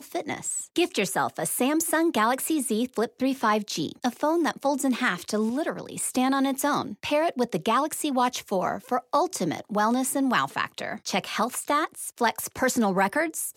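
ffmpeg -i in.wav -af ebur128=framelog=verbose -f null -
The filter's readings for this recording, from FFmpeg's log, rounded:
Integrated loudness:
  I:         -25.9 LUFS
  Threshold: -35.9 LUFS
Loudness range:
  LRA:         1.2 LU
  Threshold: -45.9 LUFS
  LRA low:   -26.4 LUFS
  LRA high:  -25.2 LUFS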